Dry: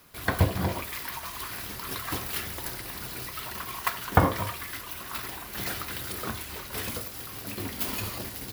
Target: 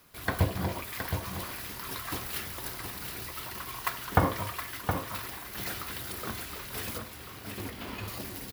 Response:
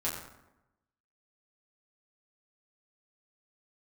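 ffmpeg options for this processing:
-filter_complex "[0:a]asettb=1/sr,asplit=3[s0][s1][s2];[s0]atrim=end=6.984[s3];[s1]atrim=start=6.98:end=8.08,asetpts=PTS-STARTPTS,afade=t=in:d=0.004:c=qsin,afade=t=out:st=1.096:d=0.004:c=qsin,acrossover=split=3700[s4][s5];[s5]acompressor=threshold=0.00501:ratio=4:attack=1:release=60[s6];[s4][s6]amix=inputs=2:normalize=0[s7];[s2]atrim=start=8.076[s8];[s3][s7]acrossfade=d=0.004:c1=hsin:c2=qsin[s9];[s9][s8]acrossfade=d=0.004:c1=qsin:c2=hsin,asplit=2[s10][s11];[s11]aecho=0:1:718:0.447[s12];[s10][s12]amix=inputs=2:normalize=0,volume=0.668"

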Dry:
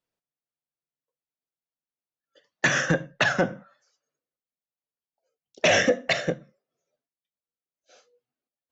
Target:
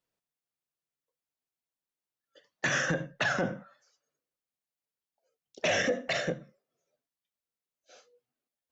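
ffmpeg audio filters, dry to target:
-af "alimiter=limit=0.106:level=0:latency=1:release=47"

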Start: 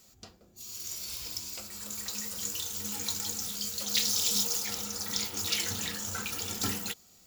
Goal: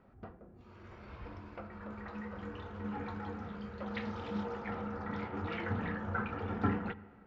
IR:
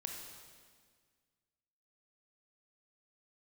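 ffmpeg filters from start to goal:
-filter_complex "[0:a]lowpass=f=1700:w=0.5412,lowpass=f=1700:w=1.3066,asplit=2[s0][s1];[1:a]atrim=start_sample=2205,lowpass=2500[s2];[s1][s2]afir=irnorm=-1:irlink=0,volume=0.299[s3];[s0][s3]amix=inputs=2:normalize=0,volume=1.5"

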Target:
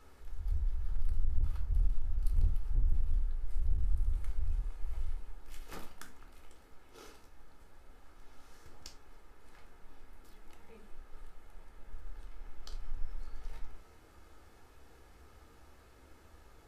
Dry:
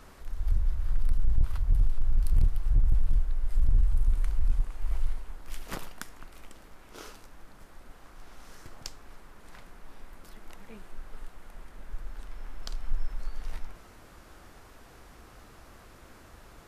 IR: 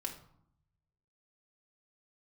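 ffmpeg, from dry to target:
-filter_complex "[0:a]asettb=1/sr,asplit=3[s0][s1][s2];[s0]atrim=end=3.644[s3];[s1]atrim=start=3.64:end=4.41,asetpts=PTS-STARTPTS,afade=t=in:d=0.004:c=qsin,afade=t=out:st=0.766:d=0.004:c=qsin,aeval=exprs='val(0)*gte(abs(val(0)),0.002)':c=same[s4];[s2]atrim=start=4.406[s5];[s3][s4]acrossfade=d=0.004:c1=hsin:c2=qsin[s6];[s6][s5]acrossfade=d=0.004:c1=qsin:c2=hsin[s7];[1:a]atrim=start_sample=2205,afade=t=out:st=0.22:d=0.01,atrim=end_sample=10143,asetrate=70560,aresample=44100[s8];[s7][s8]afir=irnorm=-1:irlink=0,volume=0.631"

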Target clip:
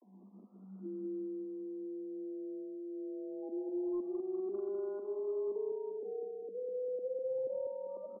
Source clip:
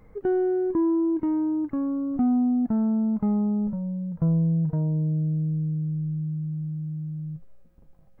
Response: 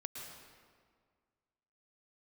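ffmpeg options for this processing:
-af "areverse,acompressor=threshold=0.0112:ratio=4,acrusher=bits=10:mix=0:aa=0.000001,afreqshift=190,aecho=1:1:198|396|594|792|990|1188|1386|1584:0.562|0.326|0.189|0.11|0.0636|0.0369|0.0214|0.0124,asoftclip=type=hard:threshold=0.0335,adynamicequalizer=threshold=0.00398:dfrequency=420:dqfactor=1.2:tfrequency=420:tqfactor=1.2:attack=5:release=100:ratio=0.375:range=1.5:mode=boostabove:tftype=bell,afftfilt=real='re*lt(b*sr/1024,710*pow(1500/710,0.5+0.5*sin(2*PI*0.26*pts/sr)))':imag='im*lt(b*sr/1024,710*pow(1500/710,0.5+0.5*sin(2*PI*0.26*pts/sr)))':win_size=1024:overlap=0.75,volume=0.562"

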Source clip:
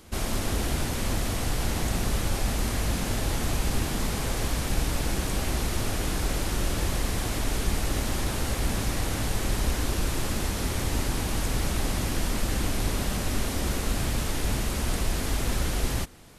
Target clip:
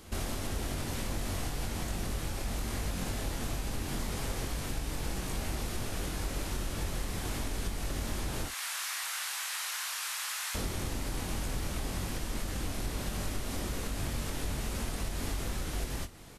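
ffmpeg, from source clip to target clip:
-filter_complex "[0:a]asettb=1/sr,asplit=3[s0][s1][s2];[s0]atrim=end=8.484[s3];[s1]atrim=start=8.48:end=10.55,asetpts=PTS-STARTPTS,afade=t=in:d=0.004:c=qsin,afade=t=out:st=2.066:d=0.004:c=qsin,highpass=f=1100:w=0.5412,highpass=f=1100:w=1.3066[s4];[s2]atrim=start=10.546[s5];[s3][s4]acrossfade=d=0.004:c1=hsin:c2=qsin[s6];[s6][s5]acrossfade=d=0.004:c1=qsin:c2=hsin,acompressor=threshold=0.0282:ratio=6,aecho=1:1:22|56:0.501|0.15,volume=0.891"

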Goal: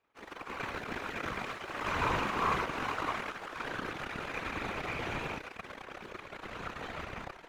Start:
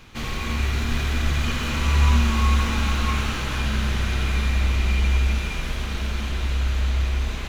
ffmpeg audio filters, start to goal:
-filter_complex "[0:a]aeval=exprs='0.398*(cos(1*acos(clip(val(0)/0.398,-1,1)))-cos(1*PI/2))+0.0631*(cos(7*acos(clip(val(0)/0.398,-1,1)))-cos(7*PI/2))+0.0251*(cos(8*acos(clip(val(0)/0.398,-1,1)))-cos(8*PI/2))':c=same,acrossover=split=320 2000:gain=0.0891 1 0.178[s0][s1][s2];[s0][s1][s2]amix=inputs=3:normalize=0,afftfilt=real='hypot(re,im)*cos(2*PI*random(0))':imag='hypot(re,im)*sin(2*PI*random(1))':win_size=512:overlap=0.75,volume=1.33"

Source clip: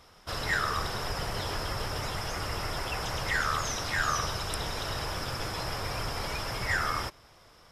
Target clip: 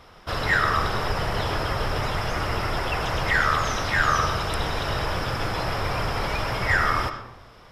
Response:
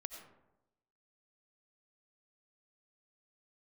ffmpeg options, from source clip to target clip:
-filter_complex "[0:a]asplit=2[s0][s1];[1:a]atrim=start_sample=2205,lowpass=4300[s2];[s1][s2]afir=irnorm=-1:irlink=0,volume=2.37[s3];[s0][s3]amix=inputs=2:normalize=0"

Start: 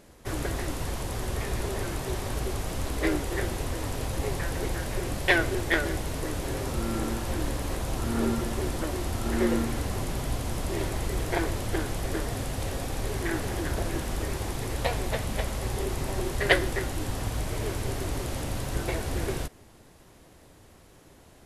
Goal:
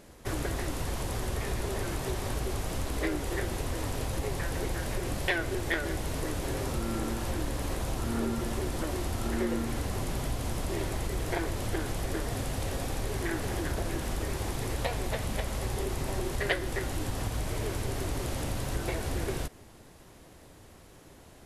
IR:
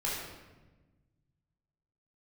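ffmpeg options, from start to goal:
-af "acompressor=threshold=0.0316:ratio=2.5,volume=1.12"

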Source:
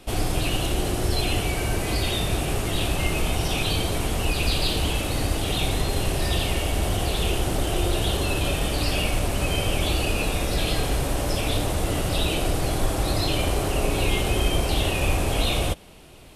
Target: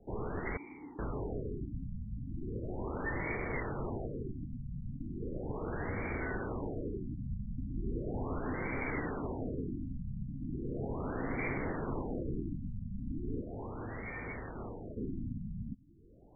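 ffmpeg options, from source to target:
-filter_complex "[0:a]highpass=f=290:t=q:w=0.5412,highpass=f=290:t=q:w=1.307,lowpass=f=3500:t=q:w=0.5176,lowpass=f=3500:t=q:w=0.7071,lowpass=f=3500:t=q:w=1.932,afreqshift=-310,asettb=1/sr,asplit=3[s0][s1][s2];[s0]atrim=end=0.574[s3];[s1]atrim=start=0.57:end=0.99,asetpts=PTS-STARTPTS,afade=t=in:d=0.004:c=qsin,afade=t=out:st=0.416:d=0.004:c=qsin,asplit=3[s4][s5][s6];[s4]bandpass=f=300:t=q:w=8,volume=1[s7];[s5]bandpass=f=870:t=q:w=8,volume=0.501[s8];[s6]bandpass=f=2240:t=q:w=8,volume=0.355[s9];[s7][s8][s9]amix=inputs=3:normalize=0[s10];[s2]atrim=start=0.986[s11];[s3][s10]acrossfade=d=0.004:c1=hsin:c2=qsin[s12];[s12][s11]acrossfade=d=0.004:c1=qsin:c2=hsin,highshelf=f=2500:g=8.5,asplit=3[s13][s14][s15];[s13]afade=t=out:st=13.4:d=0.02[s16];[s14]volume=42.2,asoftclip=hard,volume=0.0237,afade=t=in:st=13.4:d=0.02,afade=t=out:st=14.96:d=0.02[s17];[s15]afade=t=in:st=14.96:d=0.02[s18];[s16][s17][s18]amix=inputs=3:normalize=0,afftfilt=real='re*lt(b*sr/1024,240*pow(2400/240,0.5+0.5*sin(2*PI*0.37*pts/sr)))':imag='im*lt(b*sr/1024,240*pow(2400/240,0.5+0.5*sin(2*PI*0.37*pts/sr)))':win_size=1024:overlap=0.75,volume=0.501"

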